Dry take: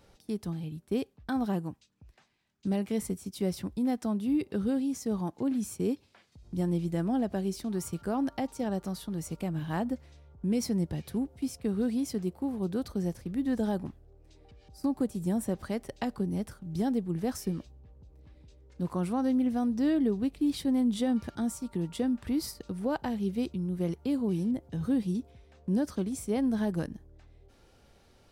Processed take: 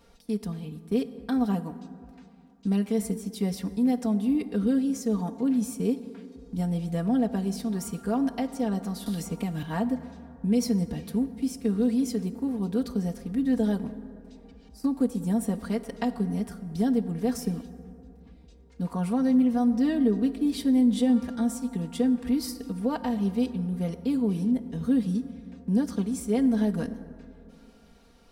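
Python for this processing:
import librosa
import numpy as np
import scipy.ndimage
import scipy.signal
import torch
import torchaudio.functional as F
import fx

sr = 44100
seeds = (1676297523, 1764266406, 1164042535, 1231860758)

y = x + 0.84 * np.pad(x, (int(4.3 * sr / 1000.0), 0))[:len(x)]
y = fx.rev_plate(y, sr, seeds[0], rt60_s=2.7, hf_ratio=0.4, predelay_ms=0, drr_db=12.0)
y = fx.band_squash(y, sr, depth_pct=100, at=(9.06, 9.63))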